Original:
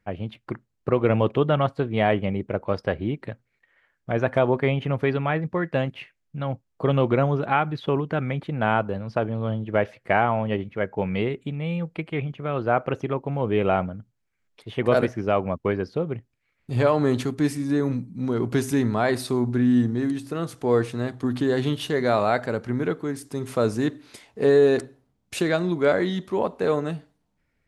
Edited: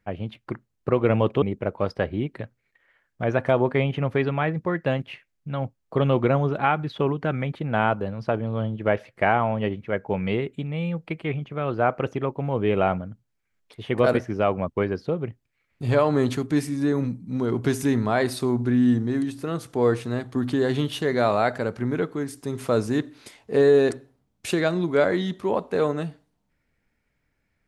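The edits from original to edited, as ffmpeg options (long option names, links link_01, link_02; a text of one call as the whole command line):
ffmpeg -i in.wav -filter_complex "[0:a]asplit=2[link_01][link_02];[link_01]atrim=end=1.422[link_03];[link_02]atrim=start=2.298[link_04];[link_03][link_04]acrossfade=duration=0.004:curve1=hsin:curve2=hsin" out.wav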